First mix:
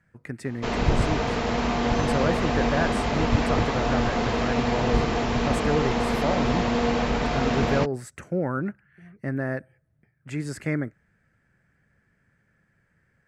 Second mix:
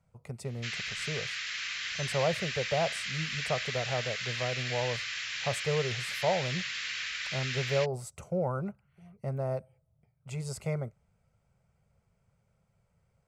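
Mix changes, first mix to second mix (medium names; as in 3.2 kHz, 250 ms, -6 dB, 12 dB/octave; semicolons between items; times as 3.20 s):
speech: add static phaser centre 710 Hz, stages 4; background: add inverse Chebyshev high-pass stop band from 890 Hz, stop band 40 dB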